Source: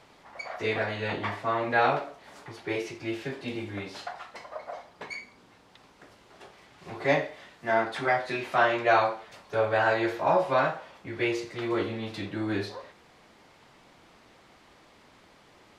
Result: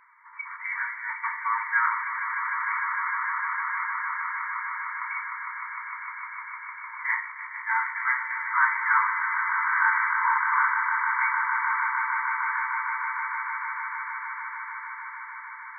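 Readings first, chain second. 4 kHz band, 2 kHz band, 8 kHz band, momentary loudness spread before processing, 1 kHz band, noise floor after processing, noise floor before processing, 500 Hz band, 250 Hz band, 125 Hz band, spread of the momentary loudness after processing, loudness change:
below −40 dB, +8.0 dB, can't be measured, 17 LU, +4.0 dB, −41 dBFS, −58 dBFS, below −40 dB, below −40 dB, below −40 dB, 13 LU, +1.5 dB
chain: echo that builds up and dies away 152 ms, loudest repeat 8, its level −9 dB
brick-wall band-pass 890–2,300 Hz
level +4 dB

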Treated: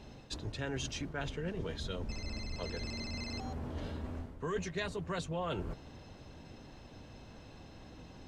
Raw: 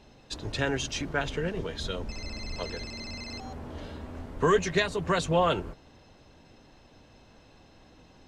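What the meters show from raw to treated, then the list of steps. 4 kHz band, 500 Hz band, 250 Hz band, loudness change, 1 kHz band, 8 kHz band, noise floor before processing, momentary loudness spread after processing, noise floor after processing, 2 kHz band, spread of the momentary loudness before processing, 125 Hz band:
−8.0 dB, −11.0 dB, −7.0 dB, −9.5 dB, −12.5 dB, −8.0 dB, −57 dBFS, 16 LU, −54 dBFS, −10.5 dB, 16 LU, −5.0 dB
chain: parametric band 100 Hz +5 dB 3 octaves
reversed playback
downward compressor 4 to 1, threshold −38 dBFS, peak gain reduction 17.5 dB
reversed playback
level +1 dB

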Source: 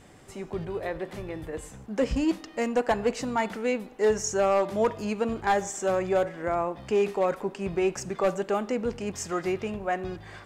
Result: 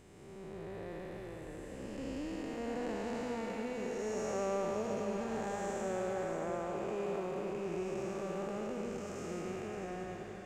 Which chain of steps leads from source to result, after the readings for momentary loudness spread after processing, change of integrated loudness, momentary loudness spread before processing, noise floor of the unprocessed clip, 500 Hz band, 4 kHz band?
9 LU, −11.0 dB, 11 LU, −48 dBFS, −11.0 dB, −11.5 dB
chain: spectrum smeared in time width 518 ms
feedback delay with all-pass diffusion 591 ms, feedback 46%, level −7 dB
level −7 dB

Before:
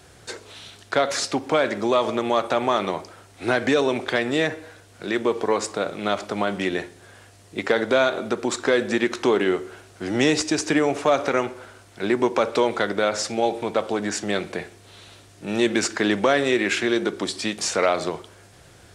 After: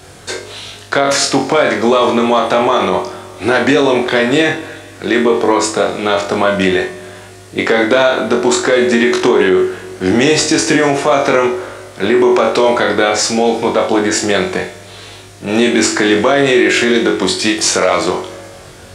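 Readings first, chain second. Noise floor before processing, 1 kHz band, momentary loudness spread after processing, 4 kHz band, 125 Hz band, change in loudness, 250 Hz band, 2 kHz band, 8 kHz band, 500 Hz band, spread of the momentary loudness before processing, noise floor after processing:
−50 dBFS, +10.0 dB, 13 LU, +11.0 dB, +10.0 dB, +10.0 dB, +10.5 dB, +10.5 dB, +12.0 dB, +10.0 dB, 13 LU, −36 dBFS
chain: on a send: flutter between parallel walls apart 3.7 metres, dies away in 0.32 s
on the sum: four-comb reverb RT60 2.4 s, combs from 27 ms, DRR 17.5 dB
boost into a limiter +11.5 dB
level −1 dB

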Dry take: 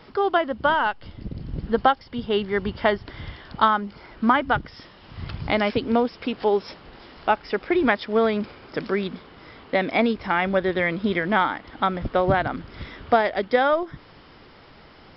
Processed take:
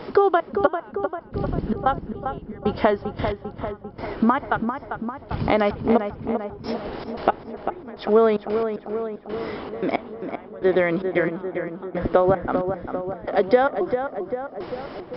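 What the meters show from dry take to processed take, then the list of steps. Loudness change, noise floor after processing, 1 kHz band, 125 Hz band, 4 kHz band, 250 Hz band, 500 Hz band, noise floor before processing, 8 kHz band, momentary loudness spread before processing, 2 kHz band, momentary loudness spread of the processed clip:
−1.0 dB, −43 dBFS, −2.0 dB, +1.0 dB, −8.0 dB, +0.5 dB, +2.0 dB, −49 dBFS, can't be measured, 15 LU, −5.5 dB, 12 LU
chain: dynamic equaliser 1,200 Hz, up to +5 dB, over −36 dBFS, Q 1.8
downward compressor 4 to 1, threshold −31 dBFS, peak gain reduction 18 dB
gate pattern "xxx.x....." 113 BPM −24 dB
parametric band 440 Hz +11 dB 2.5 octaves
on a send: feedback echo with a low-pass in the loop 396 ms, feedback 65%, low-pass 2,000 Hz, level −7 dB
on the sum: level +5.5 dB

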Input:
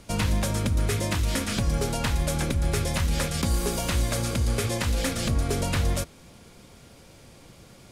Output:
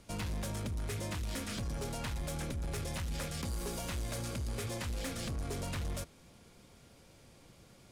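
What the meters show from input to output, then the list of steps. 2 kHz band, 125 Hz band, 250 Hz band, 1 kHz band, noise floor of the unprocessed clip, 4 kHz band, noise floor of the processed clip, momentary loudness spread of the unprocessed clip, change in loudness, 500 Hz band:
−12.0 dB, −12.5 dB, −12.0 dB, −12.0 dB, −51 dBFS, −12.0 dB, −60 dBFS, 1 LU, −12.5 dB, −12.0 dB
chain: soft clipping −23.5 dBFS, distortion −13 dB
level −9 dB

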